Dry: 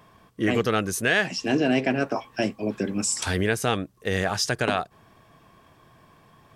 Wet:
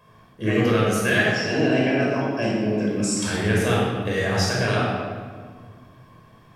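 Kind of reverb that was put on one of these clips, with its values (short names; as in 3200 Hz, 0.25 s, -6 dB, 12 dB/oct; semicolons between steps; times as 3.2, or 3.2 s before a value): shoebox room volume 2100 m³, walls mixed, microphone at 5.4 m; gain -6.5 dB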